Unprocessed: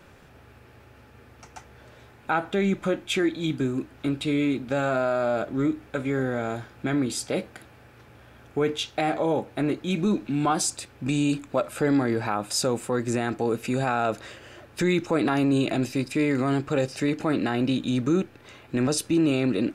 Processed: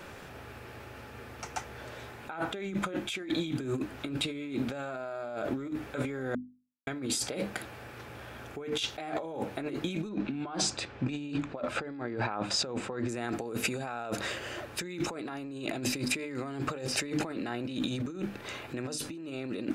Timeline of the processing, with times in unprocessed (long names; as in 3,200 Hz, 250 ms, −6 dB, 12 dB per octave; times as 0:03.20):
0:06.35–0:06.87: silence
0:10.09–0:13.09: high-frequency loss of the air 150 metres
whole clip: low-shelf EQ 190 Hz −5.5 dB; mains-hum notches 50/100/150/200/250/300 Hz; compressor whose output falls as the input rises −35 dBFS, ratio −1